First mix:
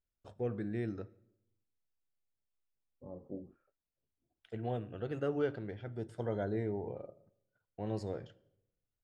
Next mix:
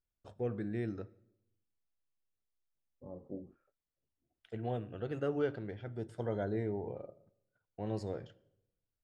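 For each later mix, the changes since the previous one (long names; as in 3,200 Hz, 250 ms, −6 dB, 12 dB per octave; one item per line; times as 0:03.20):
nothing changed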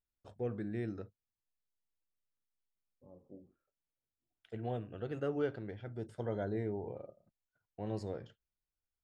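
second voice −10.0 dB
reverb: off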